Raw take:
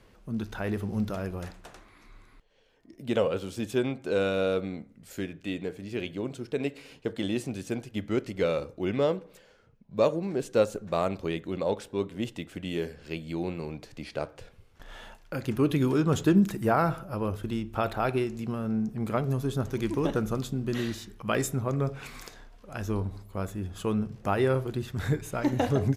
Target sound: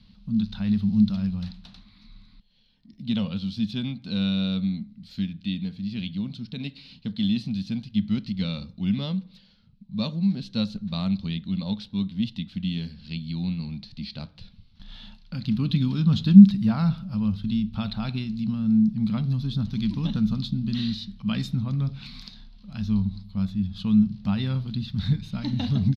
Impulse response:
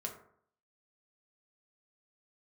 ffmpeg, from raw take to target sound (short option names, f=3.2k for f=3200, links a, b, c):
-af "firequalizer=gain_entry='entry(140,0);entry(200,10);entry(350,-24);entry(900,-13);entry(1700,-14);entry(4100,9);entry(7100,-23)':delay=0.05:min_phase=1,volume=4dB"